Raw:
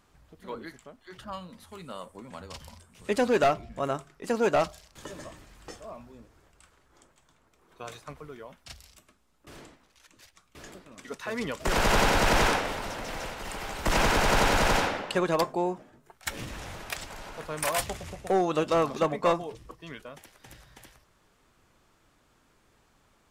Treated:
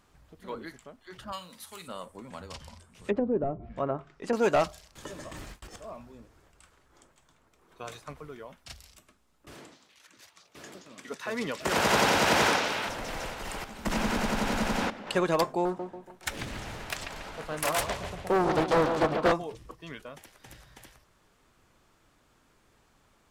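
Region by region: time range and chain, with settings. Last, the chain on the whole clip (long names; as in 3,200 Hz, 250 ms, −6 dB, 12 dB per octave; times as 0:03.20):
0:01.32–0:01.88: spectral tilt +3 dB per octave + double-tracking delay 45 ms −14 dB
0:02.54–0:04.33: treble cut that deepens with the level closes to 400 Hz, closed at −22 dBFS + high-shelf EQ 9,200 Hz −4.5 dB
0:05.31–0:05.76: noise gate with hold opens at −43 dBFS, closes at −45 dBFS + leveller curve on the samples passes 2 + compressor whose output falls as the input rises −42 dBFS, ratio −0.5
0:09.54–0:12.89: high-pass filter 130 Hz + echo through a band-pass that steps 174 ms, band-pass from 4,700 Hz, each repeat −0.7 octaves, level −3.5 dB
0:13.64–0:15.07: output level in coarse steps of 15 dB + parametric band 220 Hz +13.5 dB 0.48 octaves
0:15.65–0:19.32: bucket-brigade delay 141 ms, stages 4,096, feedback 44%, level −6.5 dB + highs frequency-modulated by the lows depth 0.72 ms
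whole clip: no processing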